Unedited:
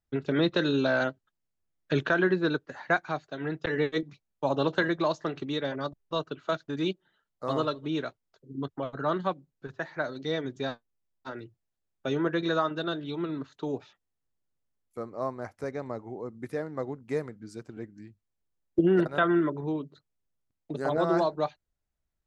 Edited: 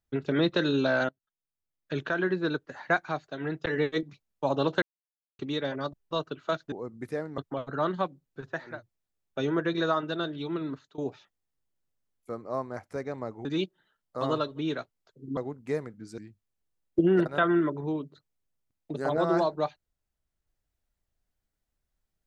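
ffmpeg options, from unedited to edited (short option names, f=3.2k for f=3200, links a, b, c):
-filter_complex "[0:a]asplit=11[a][b][c][d][e][f][g][h][i][j][k];[a]atrim=end=1.09,asetpts=PTS-STARTPTS,afade=t=out:st=1.086:d=0.004:c=hsin:silence=0.0891251[l];[b]atrim=start=1.09:end=4.82,asetpts=PTS-STARTPTS,afade=t=in:d=1.79:silence=0.0891251,afade=t=out:st=3.726:d=0.004:c=hsin[m];[c]atrim=start=4.82:end=5.39,asetpts=PTS-STARTPTS,volume=0[n];[d]atrim=start=5.39:end=6.722,asetpts=PTS-STARTPTS,afade=t=in:d=0.004:c=hsin[o];[e]atrim=start=16.128:end=16.792[p];[f]atrim=start=8.638:end=10.09[q];[g]atrim=start=11.27:end=13.66,asetpts=PTS-STARTPTS,afade=t=out:st=2.14:d=0.25:silence=0.105925[r];[h]atrim=start=13.66:end=16.132,asetpts=PTS-STARTPTS,afade=t=in:d=0.004:c=hsin:silence=0.105925[s];[i]atrim=start=6.718:end=8.642[t];[j]atrim=start=16.788:end=17.602[u];[k]atrim=start=17.978[v];[l][m][n][o]concat=n=4:v=0:a=1[w];[w][p]acrossfade=d=0.004:c1=hsin:c2=hsin[x];[x][q]acrossfade=d=0.004:c1=hsin:c2=hsin[y];[r][s]concat=n=2:v=0:a=1[z];[y][z]acrossfade=d=0.24:c1=tri:c2=tri[aa];[aa][t]acrossfade=d=0.004:c1=hsin:c2=hsin[ab];[ab][u]acrossfade=d=0.004:c1=hsin:c2=hsin[ac];[ac][v]acrossfade=d=0.004:c1=hsin:c2=hsin"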